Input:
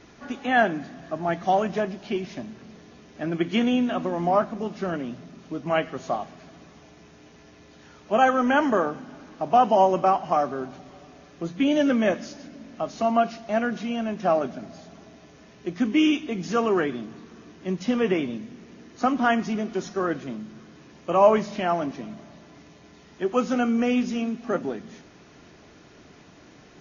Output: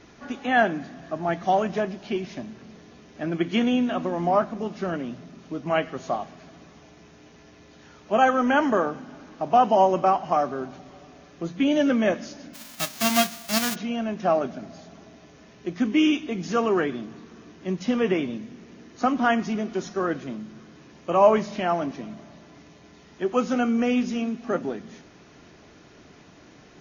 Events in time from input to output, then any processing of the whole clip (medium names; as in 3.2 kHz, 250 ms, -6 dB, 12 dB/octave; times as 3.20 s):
12.53–13.74 s: formants flattened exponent 0.1